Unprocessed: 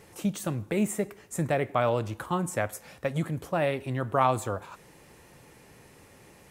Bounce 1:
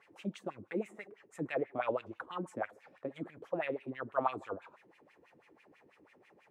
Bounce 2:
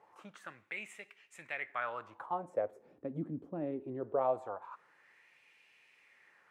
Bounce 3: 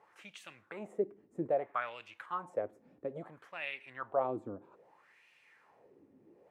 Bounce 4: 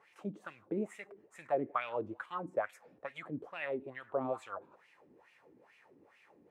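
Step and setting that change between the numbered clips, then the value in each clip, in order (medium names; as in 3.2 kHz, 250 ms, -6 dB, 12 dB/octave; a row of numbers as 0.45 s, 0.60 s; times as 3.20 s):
wah-wah, rate: 6.1 Hz, 0.22 Hz, 0.61 Hz, 2.3 Hz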